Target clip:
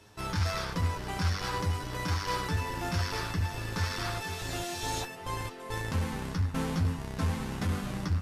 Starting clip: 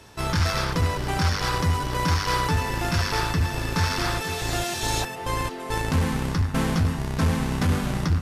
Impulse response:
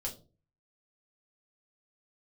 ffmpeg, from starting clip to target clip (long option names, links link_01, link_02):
-af "flanger=delay=9.6:depth=1.7:regen=36:speed=0.52:shape=sinusoidal,volume=-4.5dB"